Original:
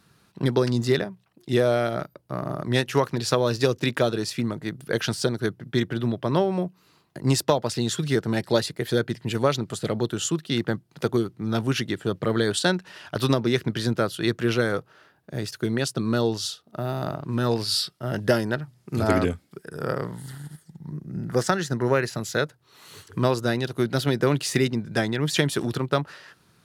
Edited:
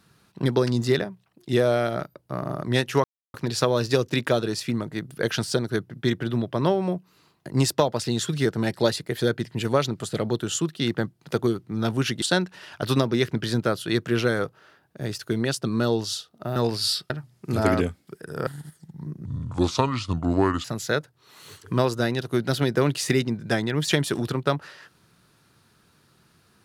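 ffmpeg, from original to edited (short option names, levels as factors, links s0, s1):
-filter_complex "[0:a]asplit=8[s0][s1][s2][s3][s4][s5][s6][s7];[s0]atrim=end=3.04,asetpts=PTS-STARTPTS,afade=t=out:st=3.036:d=0.004:c=hsin,apad=pad_dur=0.3[s8];[s1]atrim=start=3.04:end=11.922,asetpts=PTS-STARTPTS,afade=t=in:d=0.004:c=hsin[s9];[s2]atrim=start=12.548:end=16.892[s10];[s3]atrim=start=17.428:end=17.972[s11];[s4]atrim=start=18.538:end=19.912[s12];[s5]atrim=start=20.328:end=21.114[s13];[s6]atrim=start=21.11:end=22.1,asetpts=PTS-STARTPTS,asetrate=31311,aresample=44100[s14];[s7]atrim=start=22.096[s15];[s8][s9]concat=n=2:v=0:a=1[s16];[s16][s10]acrossfade=d=0.004:c1=hsin:c2=hsin[s17];[s17][s11]acrossfade=d=0.004:c1=hsin:c2=hsin[s18];[s18][s12]acrossfade=d=0.004:c1=hsin:c2=hsin[s19];[s19][s13]acrossfade=d=0.004:c1=hsin:c2=hsin[s20];[s20][s14]acrossfade=d=0.004:c1=hsin:c2=hsin[s21];[s21][s15]acrossfade=d=0.004:c1=hsin:c2=hsin"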